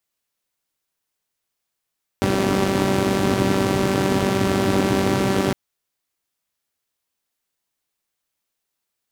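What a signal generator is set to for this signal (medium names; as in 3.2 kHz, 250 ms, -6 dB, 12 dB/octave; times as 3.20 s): four-cylinder engine model, steady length 3.31 s, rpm 5800, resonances 130/250 Hz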